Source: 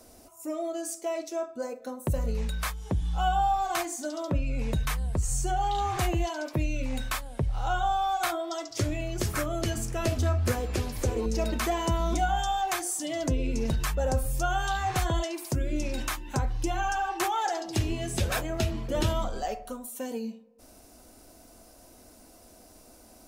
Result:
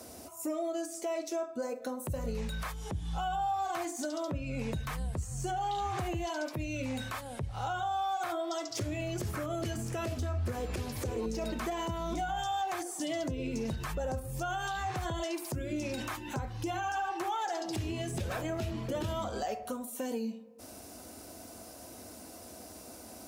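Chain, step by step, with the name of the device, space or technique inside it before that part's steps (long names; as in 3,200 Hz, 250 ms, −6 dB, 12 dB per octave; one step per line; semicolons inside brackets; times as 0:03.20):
podcast mastering chain (high-pass filter 67 Hz 24 dB per octave; de-essing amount 85%; downward compressor 2.5 to 1, threshold −40 dBFS, peak gain reduction 12 dB; brickwall limiter −31.5 dBFS, peak gain reduction 8 dB; level +6 dB; MP3 128 kbit/s 44,100 Hz)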